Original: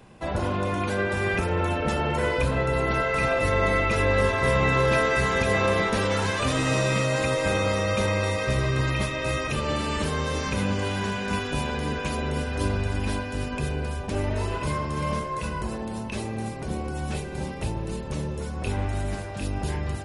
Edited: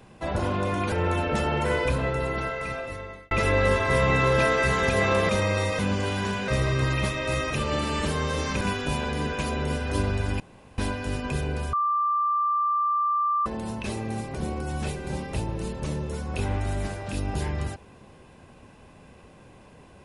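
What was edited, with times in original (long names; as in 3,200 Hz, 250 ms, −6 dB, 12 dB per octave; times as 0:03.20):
0:00.92–0:01.45: remove
0:02.28–0:03.84: fade out
0:05.82–0:07.95: remove
0:10.58–0:11.27: move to 0:08.45
0:13.06: splice in room tone 0.38 s
0:14.01–0:15.74: beep over 1,180 Hz −21 dBFS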